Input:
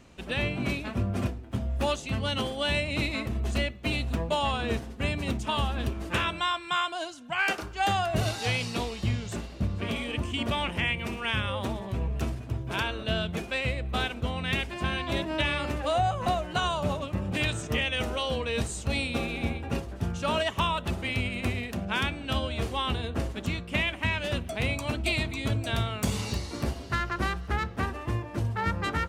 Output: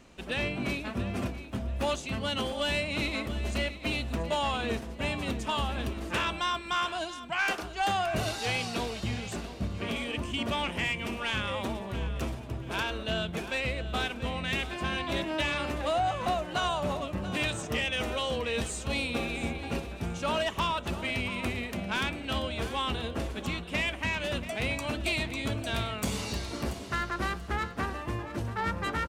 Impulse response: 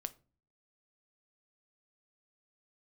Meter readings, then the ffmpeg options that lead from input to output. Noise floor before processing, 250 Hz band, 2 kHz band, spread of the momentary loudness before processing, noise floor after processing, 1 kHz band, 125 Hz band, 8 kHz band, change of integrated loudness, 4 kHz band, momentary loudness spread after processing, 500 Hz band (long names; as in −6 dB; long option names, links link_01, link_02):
−42 dBFS, −2.0 dB, −1.5 dB, 5 LU, −41 dBFS, −1.5 dB, −5.5 dB, 0.0 dB, −2.0 dB, −1.5 dB, 6 LU, −1.0 dB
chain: -af "equalizer=frequency=100:width_type=o:width=1.2:gain=-6.5,asoftclip=type=tanh:threshold=-21dB,aecho=1:1:684|1368|2052:0.211|0.0613|0.0178"